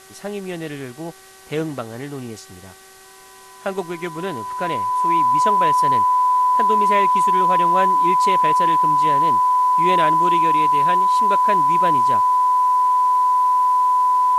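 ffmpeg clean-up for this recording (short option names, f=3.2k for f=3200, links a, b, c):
-af "bandreject=f=381.9:t=h:w=4,bandreject=f=763.8:t=h:w=4,bandreject=f=1.1457k:t=h:w=4,bandreject=f=1.5276k:t=h:w=4,bandreject=f=1.9095k:t=h:w=4,bandreject=f=1k:w=30,agate=range=-21dB:threshold=-35dB"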